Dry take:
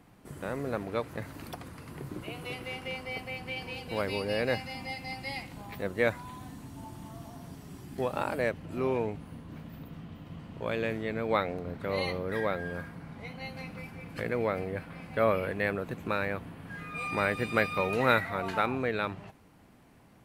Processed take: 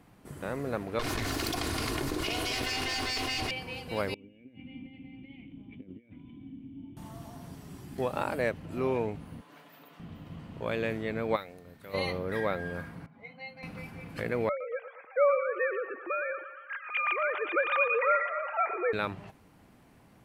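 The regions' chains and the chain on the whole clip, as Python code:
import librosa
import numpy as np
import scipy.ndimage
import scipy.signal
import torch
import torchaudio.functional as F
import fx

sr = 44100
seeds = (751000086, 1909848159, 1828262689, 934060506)

y = fx.chain(x, sr, fx.lower_of_two(delay_ms=2.8),
    fx.peak_eq(hz=4900.0, db=9.5, octaves=1.5),
    fx.env_flatten(amount_pct=100), at=(0.99, 3.51))
y = fx.chain(y, sr, fx.over_compress(threshold_db=-39.0, ratio=-1.0),
    fx.formant_cascade(vowel='i'), at=(4.14, 6.97))
y = fx.chain(y, sr, fx.highpass(hz=550.0, slope=12),
    fx.comb(ms=6.9, depth=0.44), at=(9.41, 10.0))
y = fx.pre_emphasis(y, sr, coefficient=0.8, at=(11.35, 11.93), fade=0.02)
y = fx.dmg_tone(y, sr, hz=1800.0, level_db=-68.0, at=(11.35, 11.93), fade=0.02)
y = fx.chain(y, sr, fx.spec_expand(power=1.6),
    fx.highpass(hz=760.0, slope=6),
    fx.doubler(ms=40.0, db=-13.5), at=(13.06, 13.63))
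y = fx.chain(y, sr, fx.sine_speech(),
    fx.highpass(hz=200.0, slope=12),
    fx.echo_banded(ms=115, feedback_pct=77, hz=1200.0, wet_db=-9.5), at=(14.49, 18.93))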